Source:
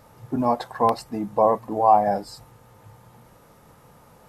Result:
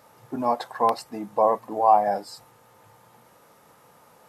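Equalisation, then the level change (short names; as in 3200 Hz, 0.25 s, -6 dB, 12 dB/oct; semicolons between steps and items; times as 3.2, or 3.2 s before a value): HPF 430 Hz 6 dB/oct; 0.0 dB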